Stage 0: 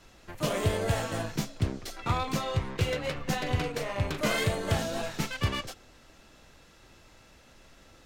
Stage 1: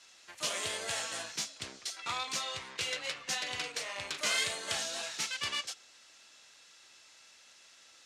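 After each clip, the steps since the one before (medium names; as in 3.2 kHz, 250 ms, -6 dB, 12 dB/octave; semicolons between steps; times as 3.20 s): frequency weighting ITU-R 468; trim -7 dB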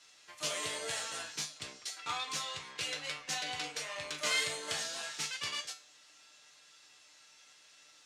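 feedback comb 150 Hz, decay 0.3 s, harmonics all, mix 80%; trim +7 dB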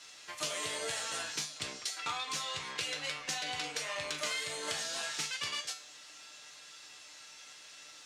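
compression 6:1, threshold -42 dBFS, peak gain reduction 14 dB; trim +8 dB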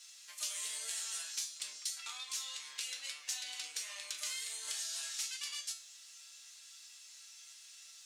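differentiator; trim +1 dB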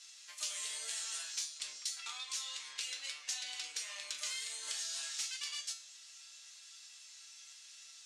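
low-pass 8.6 kHz 12 dB/octave; trim +1 dB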